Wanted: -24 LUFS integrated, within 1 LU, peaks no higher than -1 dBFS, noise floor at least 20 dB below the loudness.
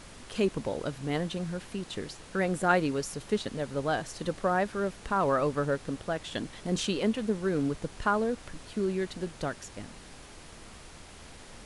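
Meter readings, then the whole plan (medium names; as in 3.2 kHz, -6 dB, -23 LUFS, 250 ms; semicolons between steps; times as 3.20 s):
noise floor -49 dBFS; noise floor target -51 dBFS; loudness -31.0 LUFS; peak level -10.5 dBFS; loudness target -24.0 LUFS
-> noise print and reduce 6 dB; trim +7 dB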